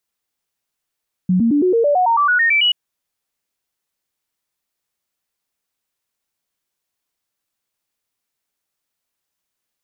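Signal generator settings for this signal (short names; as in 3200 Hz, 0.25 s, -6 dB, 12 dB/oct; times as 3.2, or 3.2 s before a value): stepped sine 183 Hz up, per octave 3, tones 13, 0.11 s, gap 0.00 s -11.5 dBFS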